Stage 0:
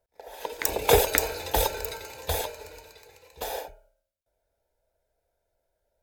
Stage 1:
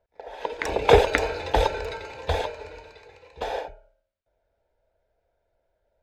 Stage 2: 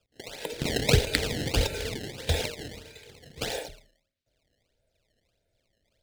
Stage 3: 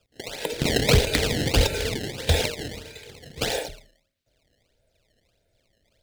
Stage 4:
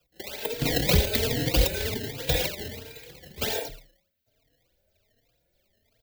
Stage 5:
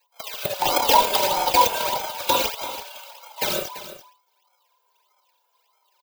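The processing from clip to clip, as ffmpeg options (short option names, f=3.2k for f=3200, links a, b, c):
-af "lowpass=3.1k,volume=4.5dB"
-filter_complex "[0:a]acrossover=split=190[a][b];[b]acompressor=threshold=-23dB:ratio=3[c];[a][c]amix=inputs=2:normalize=0,acrusher=samples=21:mix=1:aa=0.000001:lfo=1:lforange=33.6:lforate=1.6,equalizer=f=125:t=o:w=1:g=10,equalizer=f=250:t=o:w=1:g=6,equalizer=f=1k:t=o:w=1:g=-11,equalizer=f=2k:t=o:w=1:g=5,equalizer=f=4k:t=o:w=1:g=9,equalizer=f=8k:t=o:w=1:g=4,volume=-3dB"
-af "asoftclip=type=hard:threshold=-17.5dB,volume=6dB"
-filter_complex "[0:a]acrossover=split=370|840|2300[a][b][c][d];[c]alimiter=limit=-23dB:level=0:latency=1:release=186[e];[d]aexciter=amount=2.6:drive=8.2:freq=12k[f];[a][b][e][f]amix=inputs=4:normalize=0,asplit=2[g][h];[h]adelay=3.7,afreqshift=1.3[i];[g][i]amix=inputs=2:normalize=1"
-filter_complex "[0:a]afftfilt=real='real(if(between(b,1,1008),(2*floor((b-1)/48)+1)*48-b,b),0)':imag='imag(if(between(b,1,1008),(2*floor((b-1)/48)+1)*48-b,b),0)*if(between(b,1,1008),-1,1)':win_size=2048:overlap=0.75,acrossover=split=580[a][b];[a]aeval=exprs='val(0)*gte(abs(val(0)),0.0133)':c=same[c];[c][b]amix=inputs=2:normalize=0,aecho=1:1:338:0.211,volume=4.5dB"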